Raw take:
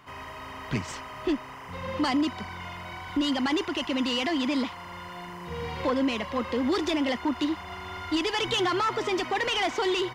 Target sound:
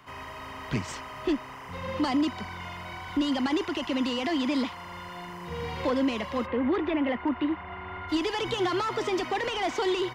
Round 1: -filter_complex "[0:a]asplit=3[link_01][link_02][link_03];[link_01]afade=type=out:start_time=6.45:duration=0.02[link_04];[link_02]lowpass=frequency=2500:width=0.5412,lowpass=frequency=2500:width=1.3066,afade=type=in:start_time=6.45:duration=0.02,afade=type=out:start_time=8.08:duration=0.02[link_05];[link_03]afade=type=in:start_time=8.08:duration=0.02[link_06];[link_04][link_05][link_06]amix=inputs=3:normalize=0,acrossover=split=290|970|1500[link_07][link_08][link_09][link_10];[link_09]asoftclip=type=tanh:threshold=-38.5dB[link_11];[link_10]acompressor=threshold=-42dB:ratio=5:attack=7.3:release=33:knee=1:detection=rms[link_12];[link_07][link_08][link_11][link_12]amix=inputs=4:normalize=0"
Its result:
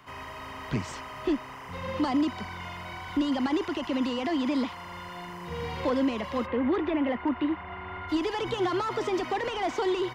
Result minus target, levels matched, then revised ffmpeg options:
downward compressor: peak gain reduction +5 dB
-filter_complex "[0:a]asplit=3[link_01][link_02][link_03];[link_01]afade=type=out:start_time=6.45:duration=0.02[link_04];[link_02]lowpass=frequency=2500:width=0.5412,lowpass=frequency=2500:width=1.3066,afade=type=in:start_time=6.45:duration=0.02,afade=type=out:start_time=8.08:duration=0.02[link_05];[link_03]afade=type=in:start_time=8.08:duration=0.02[link_06];[link_04][link_05][link_06]amix=inputs=3:normalize=0,acrossover=split=290|970|1500[link_07][link_08][link_09][link_10];[link_09]asoftclip=type=tanh:threshold=-38.5dB[link_11];[link_10]acompressor=threshold=-35.5dB:ratio=5:attack=7.3:release=33:knee=1:detection=rms[link_12];[link_07][link_08][link_11][link_12]amix=inputs=4:normalize=0"

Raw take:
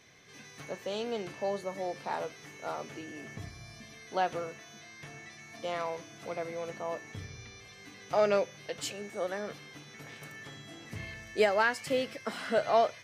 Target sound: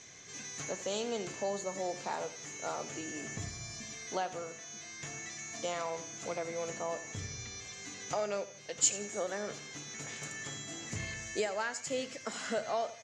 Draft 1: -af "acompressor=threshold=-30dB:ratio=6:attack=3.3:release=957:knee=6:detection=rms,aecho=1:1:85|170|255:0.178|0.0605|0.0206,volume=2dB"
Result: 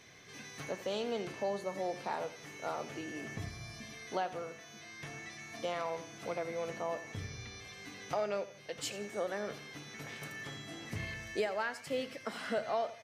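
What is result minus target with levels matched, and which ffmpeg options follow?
8,000 Hz band −11.5 dB
-af "acompressor=threshold=-30dB:ratio=6:attack=3.3:release=957:knee=6:detection=rms,lowpass=frequency=7000:width_type=q:width=10,aecho=1:1:85|170|255:0.178|0.0605|0.0206,volume=2dB"

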